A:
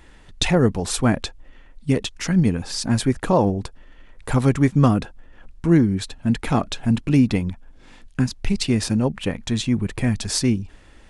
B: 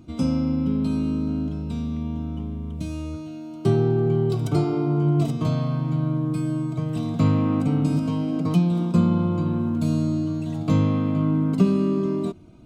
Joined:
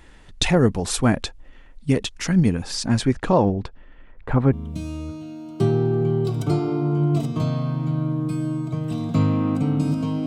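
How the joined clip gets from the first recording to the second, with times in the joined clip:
A
0:02.76–0:04.53: low-pass filter 9,700 Hz → 1,400 Hz
0:04.53: continue with B from 0:02.58

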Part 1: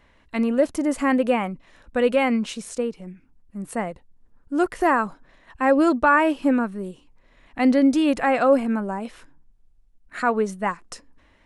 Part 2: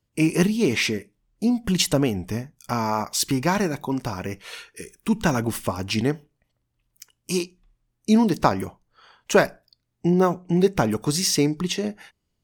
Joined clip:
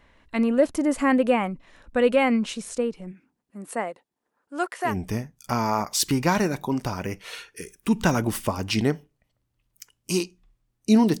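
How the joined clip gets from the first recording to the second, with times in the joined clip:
part 1
0:03.11–0:04.94: high-pass filter 190 Hz → 750 Hz
0:04.89: continue with part 2 from 0:02.09, crossfade 0.10 s

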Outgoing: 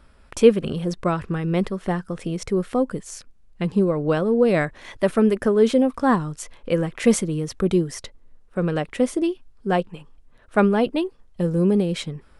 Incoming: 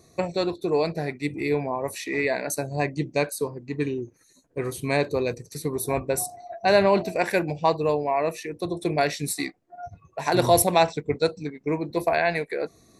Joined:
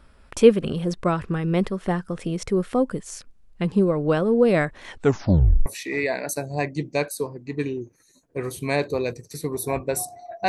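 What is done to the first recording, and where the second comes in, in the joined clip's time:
outgoing
0:04.86: tape stop 0.80 s
0:05.66: continue with incoming from 0:01.87

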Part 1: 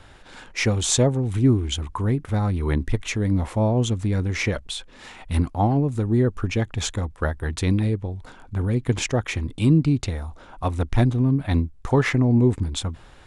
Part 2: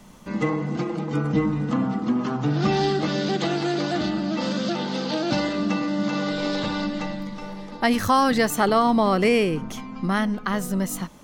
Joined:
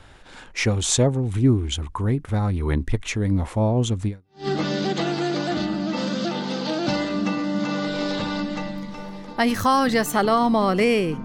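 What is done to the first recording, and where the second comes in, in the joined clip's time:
part 1
0:04.28: continue with part 2 from 0:02.72, crossfade 0.40 s exponential

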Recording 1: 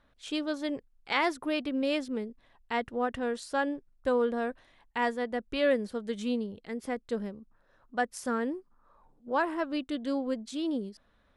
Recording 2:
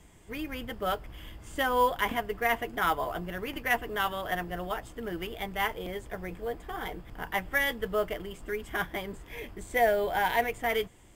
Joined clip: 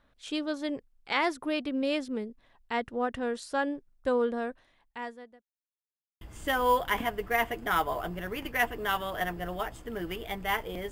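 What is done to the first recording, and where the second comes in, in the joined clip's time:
recording 1
0:04.24–0:05.43: fade out linear
0:05.43–0:06.21: silence
0:06.21: continue with recording 2 from 0:01.32

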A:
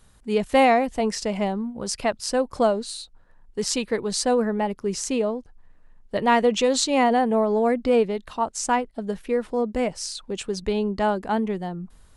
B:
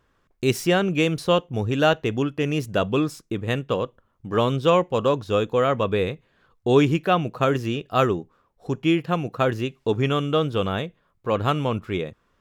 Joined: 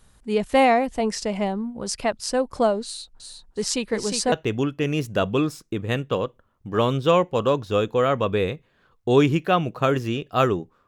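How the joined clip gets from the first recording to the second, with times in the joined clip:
A
0:02.84–0:04.32: repeating echo 358 ms, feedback 36%, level −6.5 dB
0:04.32: continue with B from 0:01.91

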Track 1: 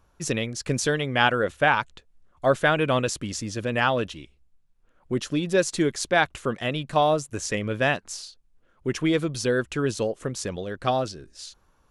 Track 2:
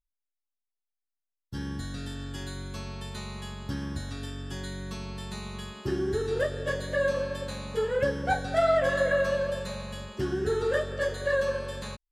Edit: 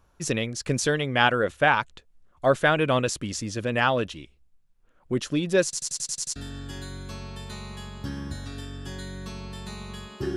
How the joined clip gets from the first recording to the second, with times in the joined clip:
track 1
0:05.64: stutter in place 0.09 s, 8 plays
0:06.36: continue with track 2 from 0:02.01

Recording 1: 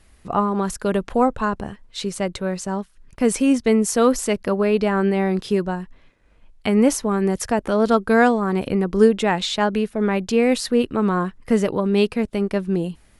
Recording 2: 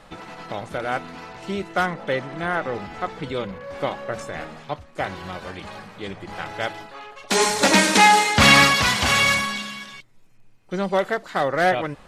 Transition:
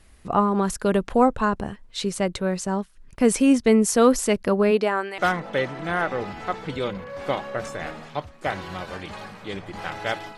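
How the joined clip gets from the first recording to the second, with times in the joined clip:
recording 1
0:04.70–0:05.18: high-pass filter 190 Hz → 1,200 Hz
0:05.18: continue with recording 2 from 0:01.72

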